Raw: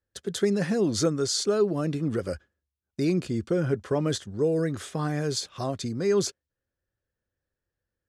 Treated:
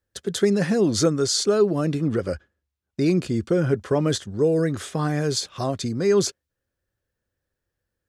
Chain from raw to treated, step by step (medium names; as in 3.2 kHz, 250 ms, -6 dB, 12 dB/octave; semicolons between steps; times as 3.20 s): 2.07–3.06 s: treble shelf 8.7 kHz -11.5 dB; trim +4.5 dB